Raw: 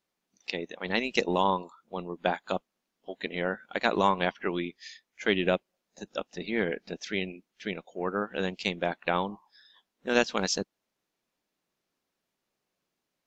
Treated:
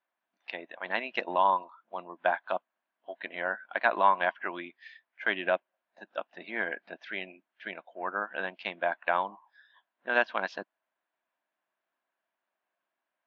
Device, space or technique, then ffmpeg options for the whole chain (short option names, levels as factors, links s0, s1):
phone earpiece: -af "highpass=370,equalizer=f=440:t=q:w=4:g=-9,equalizer=f=660:t=q:w=4:g=8,equalizer=f=1000:t=q:w=4:g=7,equalizer=f=1600:t=q:w=4:g=9,lowpass=f=3200:w=0.5412,lowpass=f=3200:w=1.3066,volume=0.631"